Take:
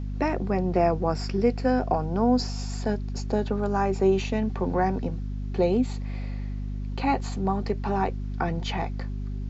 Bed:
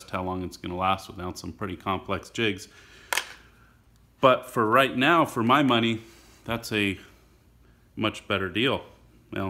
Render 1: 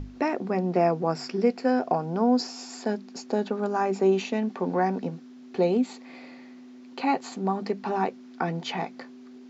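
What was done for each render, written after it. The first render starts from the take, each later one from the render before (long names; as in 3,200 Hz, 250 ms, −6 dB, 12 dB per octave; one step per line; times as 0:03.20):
mains-hum notches 50/100/150/200 Hz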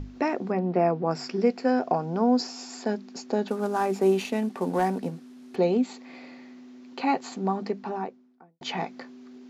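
0:00.52–0:01.11: high-frequency loss of the air 210 metres
0:03.48–0:05.56: variable-slope delta modulation 64 kbit/s
0:07.46–0:08.61: fade out and dull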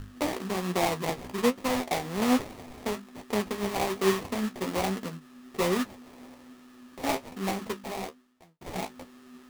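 sample-rate reduction 1,500 Hz, jitter 20%
flanger 1.2 Hz, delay 8.7 ms, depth 8.1 ms, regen +46%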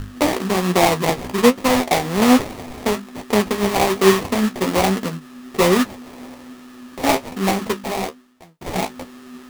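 level +11.5 dB
brickwall limiter −2 dBFS, peak gain reduction 1 dB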